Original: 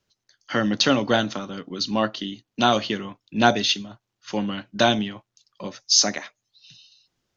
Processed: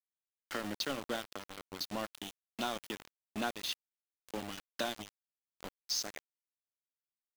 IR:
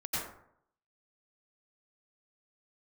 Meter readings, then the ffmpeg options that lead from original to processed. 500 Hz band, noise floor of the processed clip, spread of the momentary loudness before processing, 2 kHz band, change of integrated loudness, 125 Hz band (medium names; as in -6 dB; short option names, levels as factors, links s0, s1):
-17.5 dB, under -85 dBFS, 15 LU, -16.5 dB, -17.0 dB, -21.5 dB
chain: -af "highpass=200,acompressor=threshold=0.0398:ratio=2.5,aeval=exprs='val(0)*gte(abs(val(0)),0.0376)':c=same,volume=0.376"